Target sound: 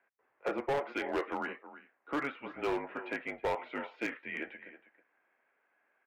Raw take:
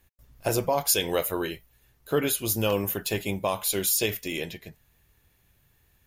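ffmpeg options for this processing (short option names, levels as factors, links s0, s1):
-filter_complex "[0:a]asplit=2[s0][s1];[s1]adelay=320,highpass=300,lowpass=3400,asoftclip=type=hard:threshold=0.106,volume=0.178[s2];[s0][s2]amix=inputs=2:normalize=0,highpass=f=570:t=q:w=0.5412,highpass=f=570:t=q:w=1.307,lowpass=f=2300:t=q:w=0.5176,lowpass=f=2300:t=q:w=0.7071,lowpass=f=2300:t=q:w=1.932,afreqshift=-140,asoftclip=type=hard:threshold=0.0422"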